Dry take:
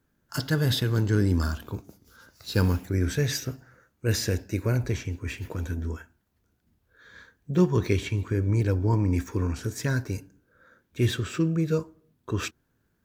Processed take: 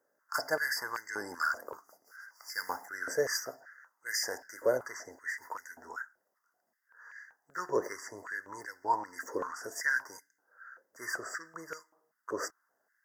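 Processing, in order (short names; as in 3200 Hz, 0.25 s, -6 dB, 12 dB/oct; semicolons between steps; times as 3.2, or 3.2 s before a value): brick-wall FIR band-stop 2100–4600 Hz; stepped high-pass 5.2 Hz 550–2100 Hz; gain -3 dB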